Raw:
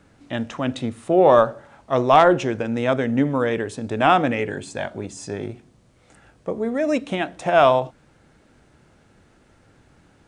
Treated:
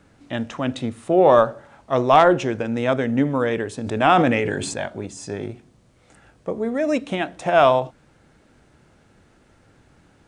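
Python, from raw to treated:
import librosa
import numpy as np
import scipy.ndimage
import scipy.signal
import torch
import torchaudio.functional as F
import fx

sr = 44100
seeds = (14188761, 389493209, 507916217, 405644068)

y = fx.sustainer(x, sr, db_per_s=29.0, at=(3.78, 4.81))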